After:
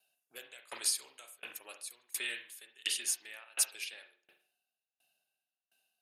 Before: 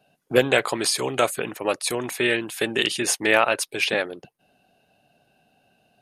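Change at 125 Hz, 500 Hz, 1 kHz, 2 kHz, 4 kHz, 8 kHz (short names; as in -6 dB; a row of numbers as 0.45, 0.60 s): under -40 dB, -34.5 dB, -28.5 dB, -19.5 dB, -12.5 dB, -6.5 dB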